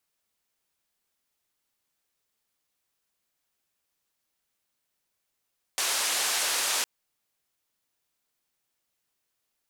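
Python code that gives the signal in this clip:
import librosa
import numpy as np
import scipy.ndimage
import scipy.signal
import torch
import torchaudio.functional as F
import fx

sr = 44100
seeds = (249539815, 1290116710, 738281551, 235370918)

y = fx.band_noise(sr, seeds[0], length_s=1.06, low_hz=530.0, high_hz=9500.0, level_db=-27.5)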